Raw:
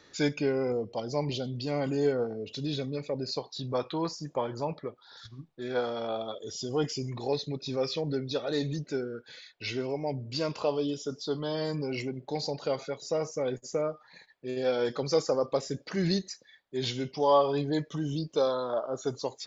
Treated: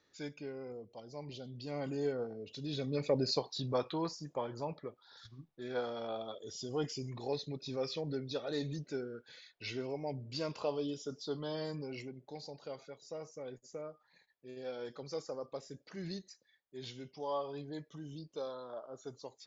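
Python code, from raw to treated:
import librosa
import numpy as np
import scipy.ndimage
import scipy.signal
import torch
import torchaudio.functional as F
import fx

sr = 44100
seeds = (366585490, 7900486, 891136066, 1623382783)

y = fx.gain(x, sr, db=fx.line((1.15, -16.0), (1.83, -8.5), (2.64, -8.5), (3.09, 2.5), (4.26, -7.0), (11.54, -7.0), (12.43, -14.5)))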